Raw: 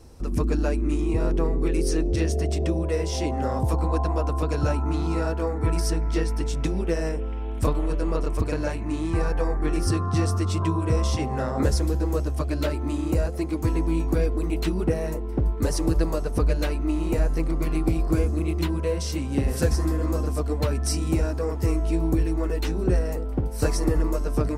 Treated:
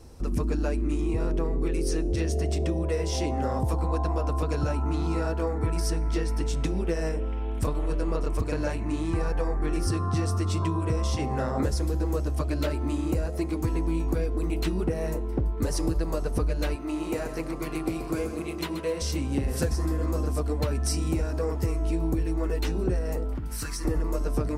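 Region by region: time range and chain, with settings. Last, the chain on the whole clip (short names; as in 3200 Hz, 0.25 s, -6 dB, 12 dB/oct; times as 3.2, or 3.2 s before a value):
16.75–19.02 HPF 360 Hz 6 dB/oct + feedback echo 0.131 s, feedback 46%, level -10.5 dB
23.35–23.85 EQ curve 320 Hz 0 dB, 560 Hz -15 dB, 1300 Hz +8 dB + compressor 16:1, threshold -28 dBFS + hard clip -25.5 dBFS
whole clip: compressor, threshold -22 dBFS; de-hum 313.9 Hz, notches 36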